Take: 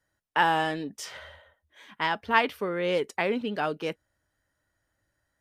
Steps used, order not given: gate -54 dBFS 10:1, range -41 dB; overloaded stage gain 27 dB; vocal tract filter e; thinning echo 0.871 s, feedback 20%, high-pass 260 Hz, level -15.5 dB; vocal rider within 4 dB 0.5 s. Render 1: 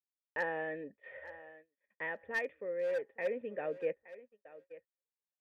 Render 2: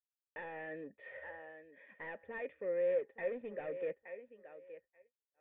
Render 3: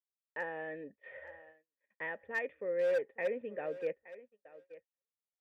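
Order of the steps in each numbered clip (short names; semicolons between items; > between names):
vocal tract filter > overloaded stage > vocal rider > thinning echo > gate; thinning echo > gate > vocal rider > overloaded stage > vocal tract filter; vocal rider > vocal tract filter > overloaded stage > thinning echo > gate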